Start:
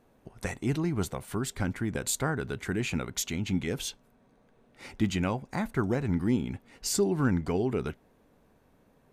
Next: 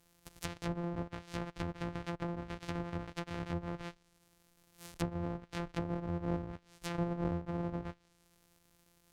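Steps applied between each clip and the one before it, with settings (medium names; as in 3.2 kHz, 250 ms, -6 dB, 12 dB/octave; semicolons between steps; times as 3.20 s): sorted samples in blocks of 256 samples; pre-emphasis filter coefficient 0.8; low-pass that closes with the level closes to 810 Hz, closed at -37 dBFS; trim +5.5 dB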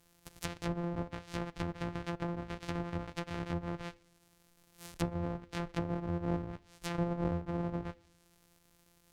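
on a send at -19.5 dB: vibrato 0.49 Hz 20 cents + reverberation RT60 0.70 s, pre-delay 4 ms; on the sum: trim +1.5 dB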